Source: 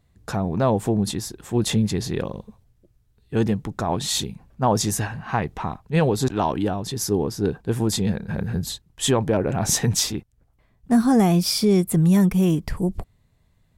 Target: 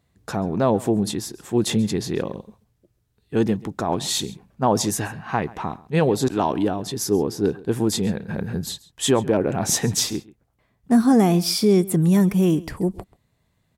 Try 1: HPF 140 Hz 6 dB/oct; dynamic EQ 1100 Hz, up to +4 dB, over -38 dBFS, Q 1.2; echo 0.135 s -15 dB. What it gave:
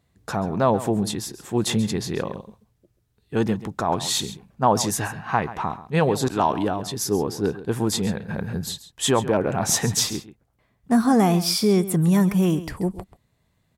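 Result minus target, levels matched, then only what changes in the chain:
echo-to-direct +6 dB; 1000 Hz band +3.5 dB
change: dynamic EQ 320 Hz, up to +4 dB, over -38 dBFS, Q 1.2; change: echo 0.135 s -21 dB

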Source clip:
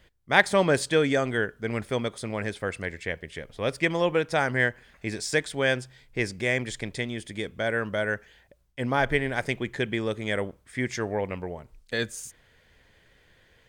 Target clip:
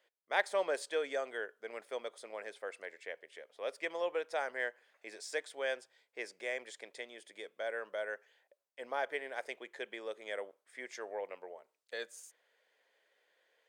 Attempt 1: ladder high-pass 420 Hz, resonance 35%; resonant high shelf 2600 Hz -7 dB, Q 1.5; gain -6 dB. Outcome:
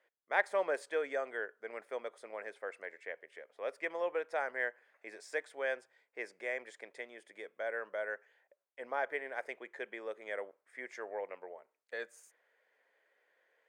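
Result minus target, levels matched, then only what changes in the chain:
4000 Hz band -8.5 dB
remove: resonant high shelf 2600 Hz -7 dB, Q 1.5

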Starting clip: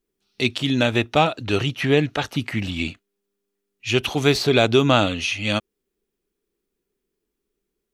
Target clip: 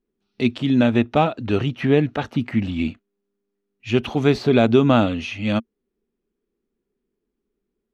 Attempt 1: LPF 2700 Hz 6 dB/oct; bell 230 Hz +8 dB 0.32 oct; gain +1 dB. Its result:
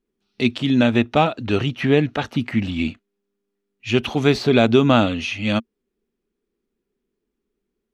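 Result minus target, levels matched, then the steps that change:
2000 Hz band +3.0 dB
change: LPF 1300 Hz 6 dB/oct

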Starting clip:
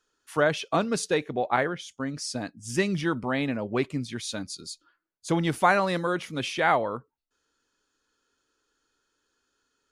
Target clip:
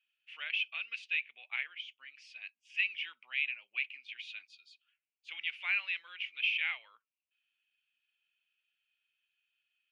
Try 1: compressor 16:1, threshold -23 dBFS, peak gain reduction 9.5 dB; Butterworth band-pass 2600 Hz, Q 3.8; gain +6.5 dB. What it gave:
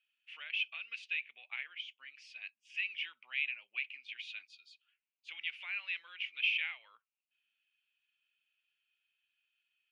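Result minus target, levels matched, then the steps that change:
compressor: peak gain reduction +9.5 dB
remove: compressor 16:1, threshold -23 dBFS, peak gain reduction 9.5 dB

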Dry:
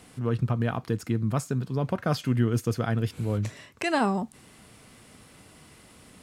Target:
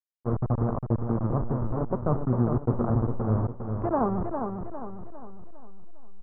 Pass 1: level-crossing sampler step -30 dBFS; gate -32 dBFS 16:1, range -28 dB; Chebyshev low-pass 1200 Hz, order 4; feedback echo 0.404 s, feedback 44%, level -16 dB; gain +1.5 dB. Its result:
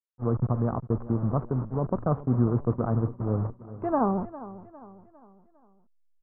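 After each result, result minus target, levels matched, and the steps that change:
echo-to-direct -10 dB; level-crossing sampler: distortion -9 dB
change: feedback echo 0.404 s, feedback 44%, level -6 dB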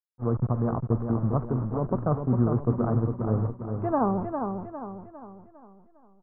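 level-crossing sampler: distortion -9 dB
change: level-crossing sampler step -22.5 dBFS

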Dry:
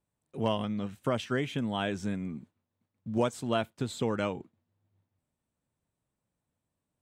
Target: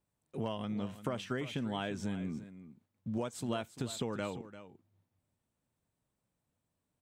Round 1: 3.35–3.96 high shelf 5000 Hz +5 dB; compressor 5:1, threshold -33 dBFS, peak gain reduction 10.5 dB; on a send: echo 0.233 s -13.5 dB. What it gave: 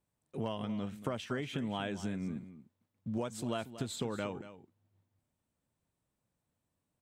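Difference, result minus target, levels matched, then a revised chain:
echo 0.112 s early
3.35–3.96 high shelf 5000 Hz +5 dB; compressor 5:1, threshold -33 dBFS, peak gain reduction 10.5 dB; on a send: echo 0.345 s -13.5 dB

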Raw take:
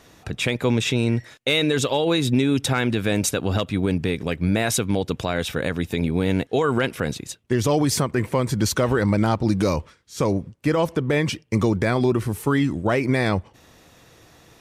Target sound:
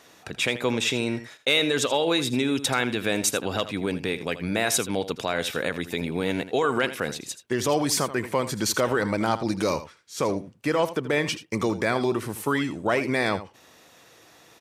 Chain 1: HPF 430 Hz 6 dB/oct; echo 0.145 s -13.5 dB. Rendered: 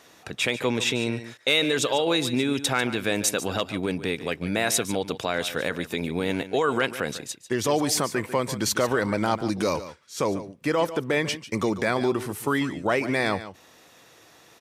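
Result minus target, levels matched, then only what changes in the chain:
echo 64 ms late
change: echo 81 ms -13.5 dB

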